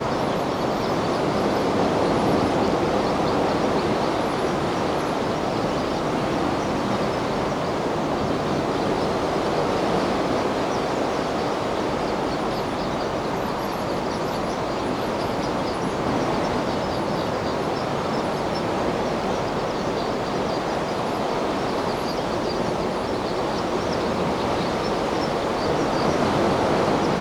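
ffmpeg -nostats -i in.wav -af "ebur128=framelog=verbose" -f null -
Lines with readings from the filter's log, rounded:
Integrated loudness:
  I:         -23.6 LUFS
  Threshold: -33.6 LUFS
Loudness range:
  LRA:         3.1 LU
  Threshold: -43.7 LUFS
  LRA low:   -24.9 LUFS
  LRA high:  -21.8 LUFS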